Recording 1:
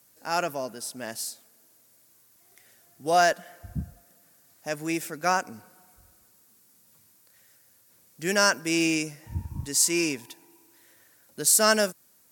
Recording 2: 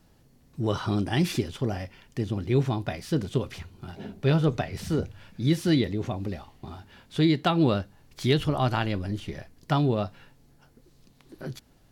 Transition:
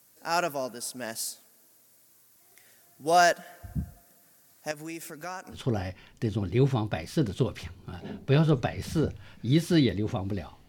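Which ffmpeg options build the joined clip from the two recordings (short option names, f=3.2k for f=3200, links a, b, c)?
-filter_complex "[0:a]asettb=1/sr,asplit=3[a][b][c];[a]atrim=end=4.714[d];[b]atrim=start=4.71:end=5.6,asetpts=PTS-STARTPTS,afade=t=in:d=0.004:c=qsin,afade=t=out:st=0.886:d=0.004:c=qsin,acompressor=threshold=-39dB:ratio=2.5:attack=3.2:release=140:knee=1:detection=peak[e];[c]atrim=start=5.596[f];[d][e]acrossfade=d=0.004:c1=hsin:c2=qsin[g];[g][f]acrossfade=d=0.004:c1=qsin:c2=hsin,apad=whole_dur=10.68,atrim=end=10.68,atrim=end=5.6,asetpts=PTS-STARTPTS[h];[1:a]atrim=start=1.45:end=6.63,asetpts=PTS-STARTPTS[i];[h][i]acrossfade=d=0.1:c1=tri:c2=tri"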